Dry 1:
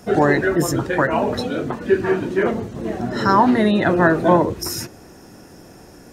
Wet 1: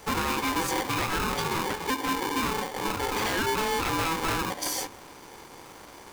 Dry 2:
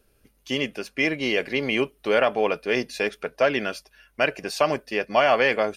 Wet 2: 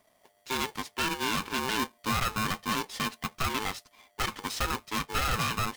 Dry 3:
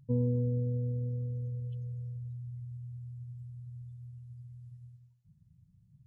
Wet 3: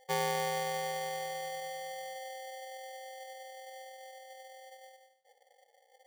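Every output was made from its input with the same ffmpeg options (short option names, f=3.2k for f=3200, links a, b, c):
-af "acompressor=threshold=-19dB:ratio=6,aeval=exprs='0.126*(abs(mod(val(0)/0.126+3,4)-2)-1)':c=same,aeval=exprs='val(0)*sgn(sin(2*PI*650*n/s))':c=same,volume=-3.5dB"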